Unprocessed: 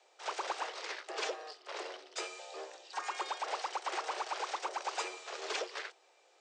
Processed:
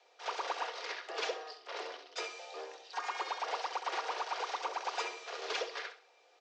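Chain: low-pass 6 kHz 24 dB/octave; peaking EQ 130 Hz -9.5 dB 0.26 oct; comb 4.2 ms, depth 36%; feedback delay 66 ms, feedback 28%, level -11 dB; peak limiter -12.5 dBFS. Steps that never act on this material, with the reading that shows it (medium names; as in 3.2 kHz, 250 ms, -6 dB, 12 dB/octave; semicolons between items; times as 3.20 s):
peaking EQ 130 Hz: input has nothing below 270 Hz; peak limiter -12.5 dBFS: peak at its input -22.5 dBFS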